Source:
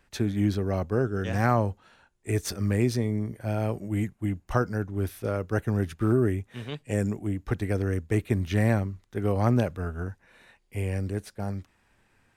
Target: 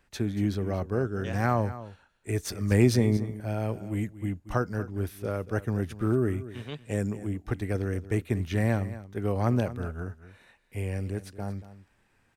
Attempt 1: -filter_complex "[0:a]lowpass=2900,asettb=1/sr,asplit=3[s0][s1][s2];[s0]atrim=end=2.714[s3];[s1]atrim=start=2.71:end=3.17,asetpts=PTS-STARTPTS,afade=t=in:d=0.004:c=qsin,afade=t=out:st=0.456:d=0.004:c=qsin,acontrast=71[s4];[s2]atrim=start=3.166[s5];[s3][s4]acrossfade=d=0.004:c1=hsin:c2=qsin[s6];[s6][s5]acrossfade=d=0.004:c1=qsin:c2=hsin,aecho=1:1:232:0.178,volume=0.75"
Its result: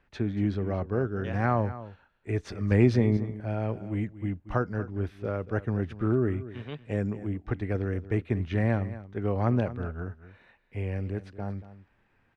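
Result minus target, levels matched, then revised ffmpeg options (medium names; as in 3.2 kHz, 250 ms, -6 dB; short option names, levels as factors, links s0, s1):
4 kHz band -6.5 dB
-filter_complex "[0:a]asettb=1/sr,asplit=3[s0][s1][s2];[s0]atrim=end=2.714[s3];[s1]atrim=start=2.71:end=3.17,asetpts=PTS-STARTPTS,afade=t=in:d=0.004:c=qsin,afade=t=out:st=0.456:d=0.004:c=qsin,acontrast=71[s4];[s2]atrim=start=3.166[s5];[s3][s4]acrossfade=d=0.004:c1=hsin:c2=qsin[s6];[s6][s5]acrossfade=d=0.004:c1=qsin:c2=hsin,aecho=1:1:232:0.178,volume=0.75"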